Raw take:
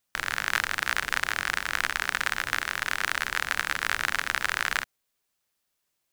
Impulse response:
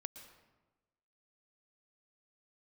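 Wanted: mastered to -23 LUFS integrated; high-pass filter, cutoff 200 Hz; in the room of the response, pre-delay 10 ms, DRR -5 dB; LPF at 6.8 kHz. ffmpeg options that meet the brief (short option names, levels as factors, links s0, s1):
-filter_complex "[0:a]highpass=200,lowpass=6800,asplit=2[s0][s1];[1:a]atrim=start_sample=2205,adelay=10[s2];[s1][s2]afir=irnorm=-1:irlink=0,volume=2.66[s3];[s0][s3]amix=inputs=2:normalize=0,volume=0.841"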